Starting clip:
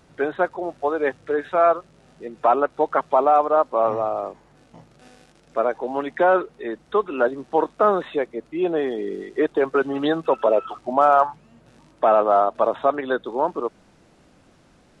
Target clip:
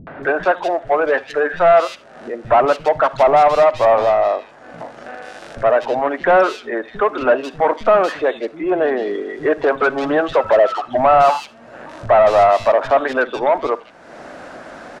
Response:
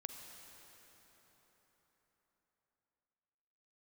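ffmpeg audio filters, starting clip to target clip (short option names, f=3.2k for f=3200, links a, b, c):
-filter_complex "[0:a]equalizer=f=250:t=o:w=0.67:g=6,equalizer=f=630:t=o:w=0.67:g=9,equalizer=f=1.6k:t=o:w=0.67:g=8,asplit=2[a][b];[b]highpass=f=720:p=1,volume=16dB,asoftclip=type=tanh:threshold=-4.5dB[c];[a][c]amix=inputs=2:normalize=0,lowpass=f=2.7k:p=1,volume=-6dB,acrossover=split=210|2800[d][e][f];[e]adelay=70[g];[f]adelay=230[h];[d][g][h]amix=inputs=3:normalize=0,asplit=2[i][j];[1:a]atrim=start_sample=2205,atrim=end_sample=3969[k];[j][k]afir=irnorm=-1:irlink=0,volume=4.5dB[l];[i][l]amix=inputs=2:normalize=0,acompressor=mode=upward:threshold=-15dB:ratio=2.5,volume=-8dB"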